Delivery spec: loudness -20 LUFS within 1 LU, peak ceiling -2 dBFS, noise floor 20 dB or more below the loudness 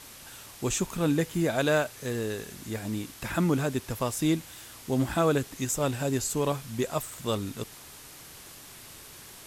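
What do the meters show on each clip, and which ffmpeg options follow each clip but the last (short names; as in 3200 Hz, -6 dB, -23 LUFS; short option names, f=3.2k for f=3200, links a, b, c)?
noise floor -48 dBFS; noise floor target -49 dBFS; loudness -29.0 LUFS; peak -13.0 dBFS; loudness target -20.0 LUFS
-> -af "afftdn=nr=6:nf=-48"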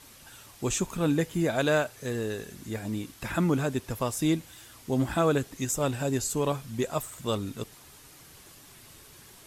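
noise floor -52 dBFS; loudness -29.0 LUFS; peak -13.5 dBFS; loudness target -20.0 LUFS
-> -af "volume=9dB"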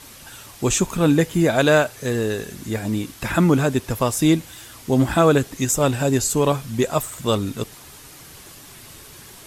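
loudness -20.0 LUFS; peak -4.5 dBFS; noise floor -43 dBFS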